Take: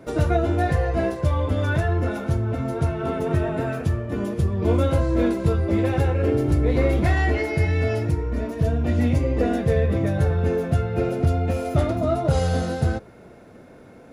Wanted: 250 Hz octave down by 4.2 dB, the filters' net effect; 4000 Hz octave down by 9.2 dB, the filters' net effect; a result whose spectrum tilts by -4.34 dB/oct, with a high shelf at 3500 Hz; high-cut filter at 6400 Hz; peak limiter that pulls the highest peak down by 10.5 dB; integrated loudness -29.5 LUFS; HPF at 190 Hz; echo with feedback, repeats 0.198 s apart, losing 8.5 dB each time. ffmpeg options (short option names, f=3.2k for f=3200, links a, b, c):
-af "highpass=190,lowpass=6.4k,equalizer=f=250:t=o:g=-4,highshelf=f=3.5k:g=-7.5,equalizer=f=4k:t=o:g=-6.5,alimiter=limit=-22dB:level=0:latency=1,aecho=1:1:198|396|594|792:0.376|0.143|0.0543|0.0206,volume=0.5dB"